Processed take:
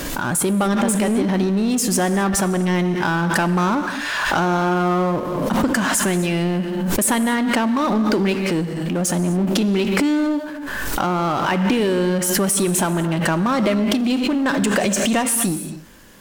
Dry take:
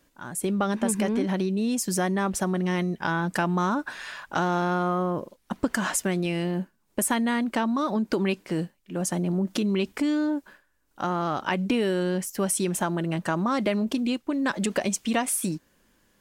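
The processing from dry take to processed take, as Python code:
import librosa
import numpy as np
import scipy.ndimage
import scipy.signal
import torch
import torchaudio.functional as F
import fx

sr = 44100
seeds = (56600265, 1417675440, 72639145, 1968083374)

y = fx.rev_gated(x, sr, seeds[0], gate_ms=290, shape='flat', drr_db=10.0)
y = fx.power_curve(y, sr, exponent=0.7)
y = fx.pre_swell(y, sr, db_per_s=24.0)
y = y * librosa.db_to_amplitude(2.0)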